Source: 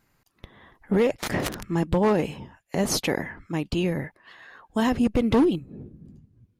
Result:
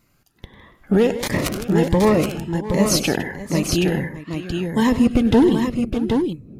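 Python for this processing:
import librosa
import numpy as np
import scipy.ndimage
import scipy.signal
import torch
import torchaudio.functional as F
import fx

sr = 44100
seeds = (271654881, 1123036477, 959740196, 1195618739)

y = fx.echo_multitap(x, sr, ms=(98, 157, 607, 773), db=(-15.0, -14.5, -15.0, -5.5))
y = fx.notch_cascade(y, sr, direction='rising', hz=1.4)
y = y * librosa.db_to_amplitude(6.0)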